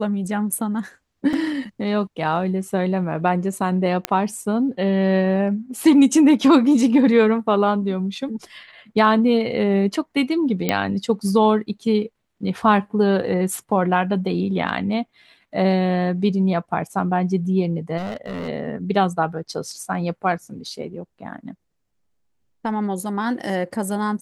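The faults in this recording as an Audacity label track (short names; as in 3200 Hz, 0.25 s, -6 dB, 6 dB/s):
1.330000	1.330000	gap 3.1 ms
4.050000	4.050000	pop -5 dBFS
10.690000	10.690000	pop -5 dBFS
17.970000	18.490000	clipped -25 dBFS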